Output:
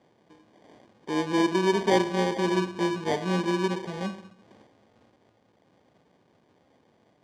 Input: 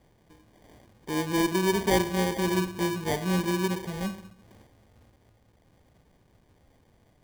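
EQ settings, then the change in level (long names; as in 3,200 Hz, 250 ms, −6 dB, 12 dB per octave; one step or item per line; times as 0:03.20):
high-pass filter 210 Hz 12 dB per octave
high-frequency loss of the air 100 metres
parametric band 2,000 Hz −2.5 dB
+3.0 dB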